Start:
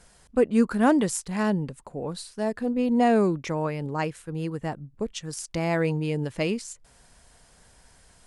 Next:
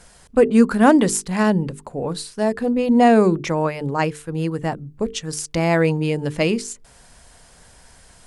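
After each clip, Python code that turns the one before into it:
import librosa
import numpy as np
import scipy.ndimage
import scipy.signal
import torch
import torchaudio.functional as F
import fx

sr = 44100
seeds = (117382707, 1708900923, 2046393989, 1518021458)

y = fx.hum_notches(x, sr, base_hz=50, count=9)
y = y * 10.0 ** (7.5 / 20.0)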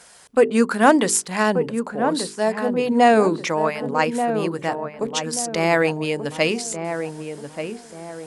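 y = fx.highpass(x, sr, hz=560.0, slope=6)
y = fx.echo_filtered(y, sr, ms=1183, feedback_pct=41, hz=1200.0, wet_db=-7.0)
y = y * 10.0 ** (3.0 / 20.0)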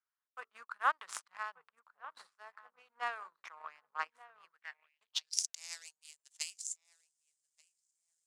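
y = fx.tone_stack(x, sr, knobs='10-0-10')
y = fx.power_curve(y, sr, exponent=2.0)
y = fx.filter_sweep_bandpass(y, sr, from_hz=1200.0, to_hz=7200.0, start_s=4.43, end_s=5.55, q=3.1)
y = y * 10.0 ** (11.0 / 20.0)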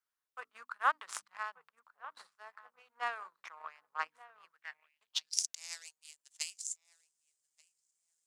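y = fx.hum_notches(x, sr, base_hz=50, count=6)
y = y * 10.0 ** (1.0 / 20.0)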